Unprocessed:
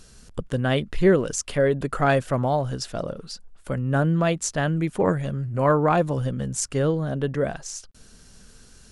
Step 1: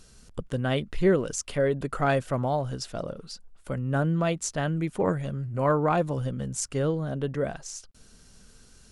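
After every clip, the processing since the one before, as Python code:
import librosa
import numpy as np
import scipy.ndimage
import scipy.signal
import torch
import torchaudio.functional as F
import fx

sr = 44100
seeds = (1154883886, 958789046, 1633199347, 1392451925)

y = fx.notch(x, sr, hz=1700.0, q=22.0)
y = F.gain(torch.from_numpy(y), -4.0).numpy()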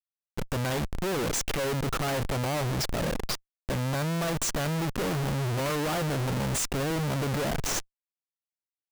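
y = fx.schmitt(x, sr, flips_db=-40.5)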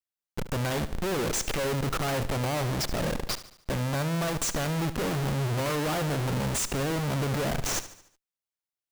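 y = fx.echo_feedback(x, sr, ms=73, feedback_pct=49, wet_db=-14)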